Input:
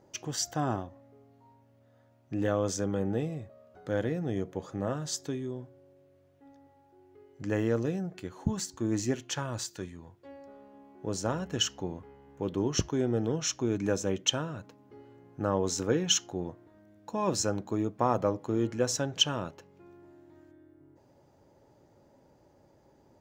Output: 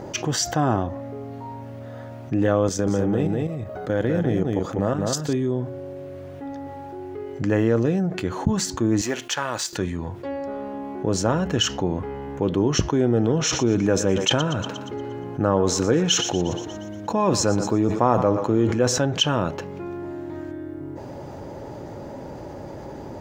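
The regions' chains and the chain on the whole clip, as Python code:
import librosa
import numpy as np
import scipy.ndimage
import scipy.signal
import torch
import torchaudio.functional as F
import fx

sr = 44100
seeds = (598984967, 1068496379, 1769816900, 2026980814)

y = fx.chain(x, sr, fx.level_steps(step_db=11),
    fx.high_shelf(hz=12000.0, db=8.5),
    fx.echo_single(ms=199, db=-4.5), at=(2.67, 5.33))
y = fx.chain(y, sr, fx.law_mismatch(coded='A'),
    fx.highpass(hz=960.0, slope=6), at=(9.01, 9.73))
y = fx.chain(y, sr, fx.echo_thinned(ms=118, feedback_pct=49, hz=600.0, wet_db=-14.0),
    fx.sustainer(db_per_s=120.0), at=(13.08, 19.0))
y = fx.high_shelf(y, sr, hz=4500.0, db=-8.5)
y = fx.env_flatten(y, sr, amount_pct=50)
y = y * librosa.db_to_amplitude(6.5)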